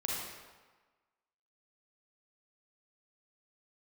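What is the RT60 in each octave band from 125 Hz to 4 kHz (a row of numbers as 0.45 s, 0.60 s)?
1.2 s, 1.2 s, 1.3 s, 1.4 s, 1.2 s, 1.0 s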